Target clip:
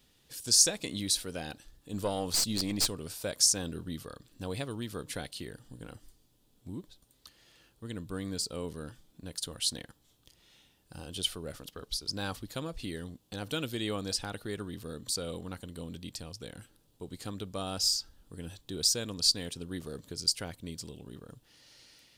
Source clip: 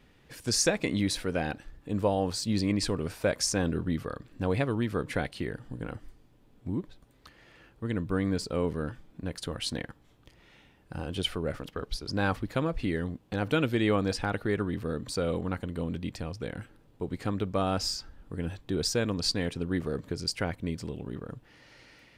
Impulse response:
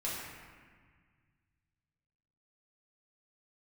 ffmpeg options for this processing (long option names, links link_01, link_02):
-filter_complex "[0:a]aexciter=amount=4.9:drive=4.7:freq=3100,asettb=1/sr,asplit=3[link_01][link_02][link_03];[link_01]atrim=end=1.934[link_04];[link_02]atrim=start=1.93:end=2.88,asetpts=PTS-STARTPTS,afade=type=in:duration=0.004:curve=qsin,afade=type=out:start_time=0.946:duration=0.004:curve=qsin,aeval=exprs='0.596*(cos(1*acos(clip(val(0)/0.596,-1,1)))-cos(1*PI/2))+0.119*(cos(2*acos(clip(val(0)/0.596,-1,1)))-cos(2*PI/2))+0.211*(cos(3*acos(clip(val(0)/0.596,-1,1)))-cos(3*PI/2))+0.188*(cos(5*acos(clip(val(0)/0.596,-1,1)))-cos(5*PI/2))+0.0473*(cos(6*acos(clip(val(0)/0.596,-1,1)))-cos(6*PI/2))':channel_layout=same[link_05];[link_03]atrim=start=2.876[link_06];[link_04][link_05]acrossfade=duration=0.004:curve1=hsin:curve2=qsin[link_07];[link_07][link_06]acrossfade=duration=0.004:curve1=qsin:curve2=hsin,volume=-9dB"